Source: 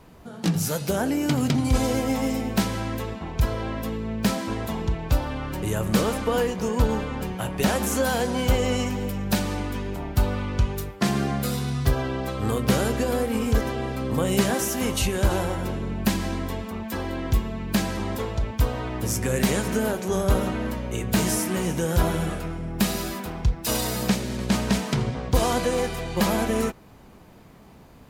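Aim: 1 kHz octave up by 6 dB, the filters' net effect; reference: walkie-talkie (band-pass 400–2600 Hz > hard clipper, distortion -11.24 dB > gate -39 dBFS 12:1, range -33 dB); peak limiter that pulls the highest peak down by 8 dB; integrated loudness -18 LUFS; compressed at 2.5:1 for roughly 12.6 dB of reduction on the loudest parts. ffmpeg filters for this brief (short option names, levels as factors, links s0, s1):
-af "equalizer=f=1000:t=o:g=8,acompressor=threshold=0.0178:ratio=2.5,alimiter=level_in=1.06:limit=0.0631:level=0:latency=1,volume=0.944,highpass=400,lowpass=2600,asoftclip=type=hard:threshold=0.015,agate=range=0.0224:threshold=0.0112:ratio=12,volume=15.8"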